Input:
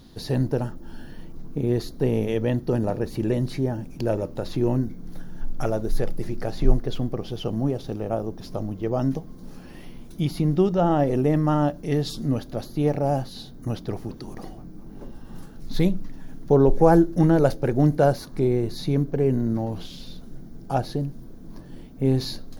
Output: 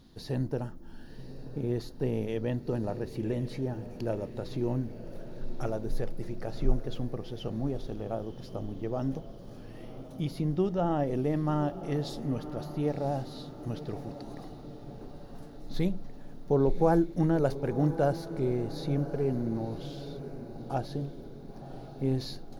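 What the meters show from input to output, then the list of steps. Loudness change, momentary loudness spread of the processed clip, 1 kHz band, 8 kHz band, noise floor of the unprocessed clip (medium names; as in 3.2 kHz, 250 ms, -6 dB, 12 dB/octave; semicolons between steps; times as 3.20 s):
-8.0 dB, 18 LU, -7.5 dB, no reading, -41 dBFS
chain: treble shelf 8.7 kHz -4.5 dB; on a send: echo that smears into a reverb 1052 ms, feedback 56%, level -13 dB; on the sum: trim -8 dB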